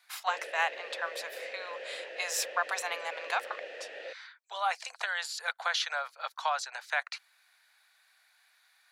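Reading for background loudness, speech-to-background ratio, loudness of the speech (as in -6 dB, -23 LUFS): -42.5 LUFS, 8.5 dB, -34.0 LUFS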